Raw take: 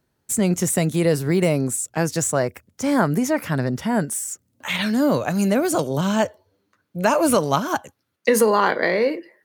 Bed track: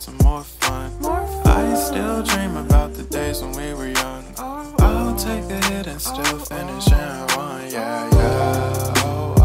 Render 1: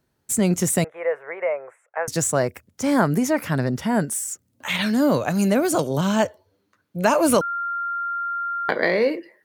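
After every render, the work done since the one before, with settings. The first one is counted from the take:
0:00.84–0:02.08: elliptic band-pass filter 520–2,100 Hz
0:07.41–0:08.69: beep over 1,390 Hz −23.5 dBFS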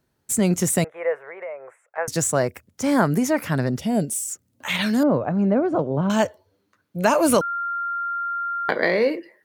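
0:01.23–0:01.98: downward compressor 2 to 1, threshold −37 dBFS
0:03.79–0:04.30: flat-topped bell 1,300 Hz −15.5 dB 1.3 octaves
0:05.03–0:06.10: low-pass filter 1,100 Hz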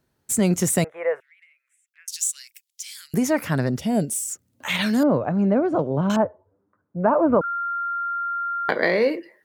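0:01.20–0:03.14: inverse Chebyshev high-pass filter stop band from 870 Hz, stop band 60 dB
0:06.16–0:07.44: low-pass filter 1,300 Hz 24 dB per octave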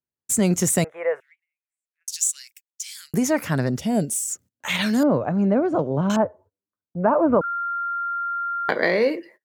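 noise gate −47 dBFS, range −27 dB
parametric band 6,700 Hz +3.5 dB 0.52 octaves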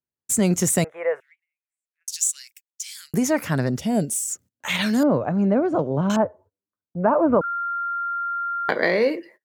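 no processing that can be heard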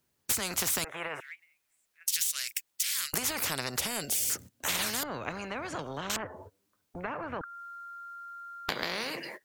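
downward compressor, threshold −24 dBFS, peak gain reduction 11 dB
every bin compressed towards the loudest bin 4 to 1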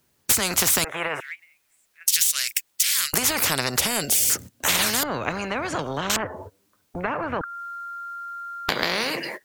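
level +9.5 dB
brickwall limiter −1 dBFS, peak gain reduction 2 dB

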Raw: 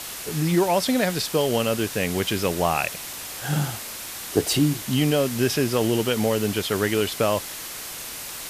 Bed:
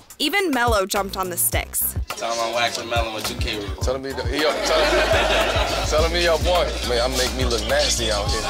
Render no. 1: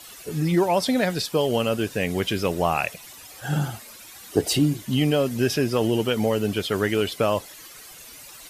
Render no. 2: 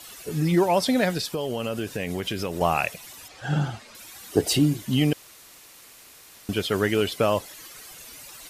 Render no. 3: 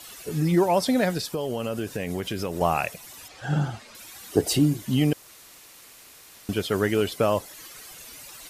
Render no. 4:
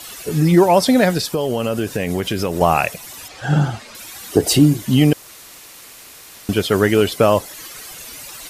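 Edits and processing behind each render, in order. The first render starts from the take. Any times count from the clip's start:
broadband denoise 13 dB, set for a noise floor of −35 dBFS
0:01.17–0:02.61: downward compressor, threshold −24 dBFS; 0:03.28–0:03.95: low-pass filter 5,200 Hz; 0:05.13–0:06.49: fill with room tone
dynamic equaliser 3,000 Hz, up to −4 dB, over −43 dBFS, Q 0.9
level +8.5 dB; brickwall limiter −1 dBFS, peak gain reduction 3 dB

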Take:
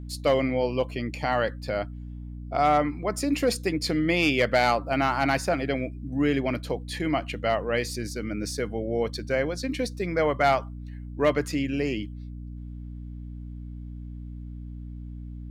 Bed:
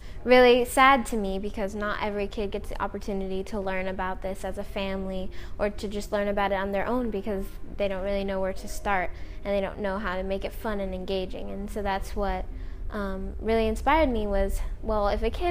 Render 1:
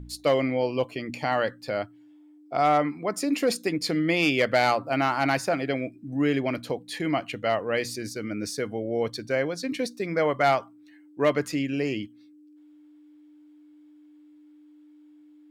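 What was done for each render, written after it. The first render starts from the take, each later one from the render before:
hum removal 60 Hz, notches 4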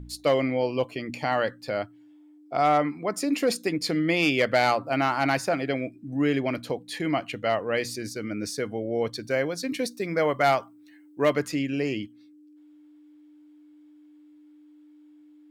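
0:09.23–0:11.42: high-shelf EQ 9,700 Hz +9.5 dB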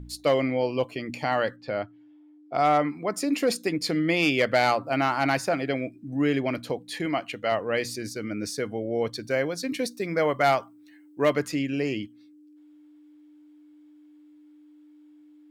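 0:01.56–0:02.54: high-frequency loss of the air 160 metres
0:07.06–0:07.52: low-shelf EQ 190 Hz −8.5 dB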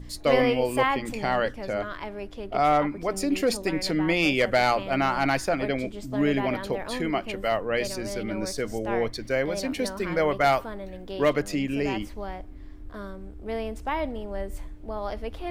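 mix in bed −7 dB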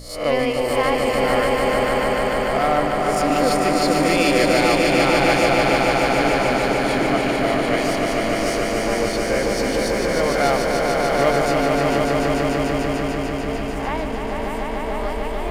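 peak hold with a rise ahead of every peak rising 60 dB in 0.48 s
echo that builds up and dies away 148 ms, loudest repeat 5, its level −4.5 dB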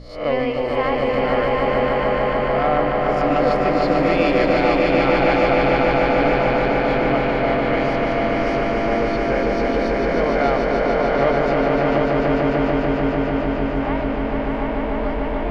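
high-frequency loss of the air 260 metres
delay with a low-pass on its return 718 ms, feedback 75%, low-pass 2,700 Hz, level −7 dB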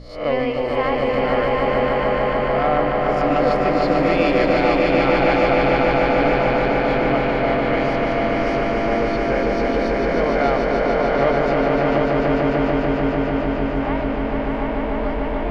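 no processing that can be heard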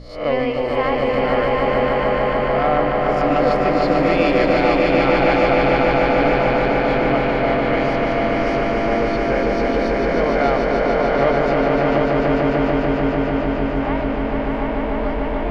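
level +1 dB

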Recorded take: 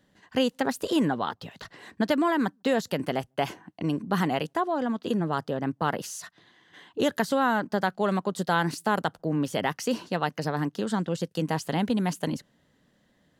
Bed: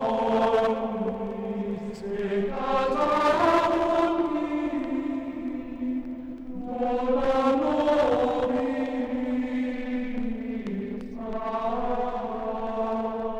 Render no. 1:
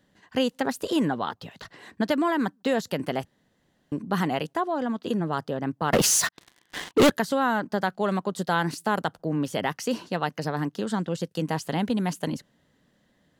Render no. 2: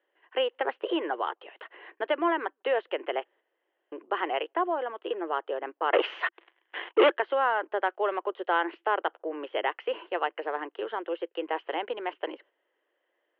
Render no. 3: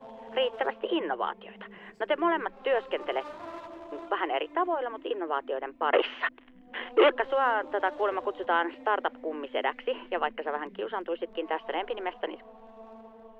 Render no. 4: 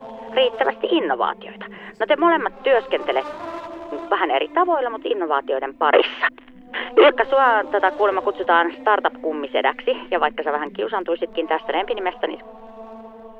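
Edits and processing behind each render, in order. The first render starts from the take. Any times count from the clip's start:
0:03.25–0:03.92: fill with room tone; 0:05.93–0:07.10: leveller curve on the samples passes 5
Chebyshev band-pass filter 340–3,100 Hz, order 5; noise gate −55 dBFS, range −6 dB
mix in bed −20.5 dB
level +10 dB; brickwall limiter −2 dBFS, peak gain reduction 2.5 dB

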